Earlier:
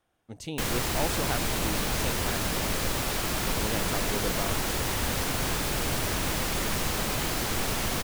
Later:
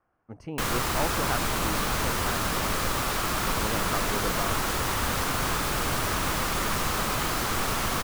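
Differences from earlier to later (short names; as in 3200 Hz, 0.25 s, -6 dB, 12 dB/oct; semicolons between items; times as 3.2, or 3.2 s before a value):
speech: add running mean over 12 samples; master: add bell 1200 Hz +8 dB 0.76 oct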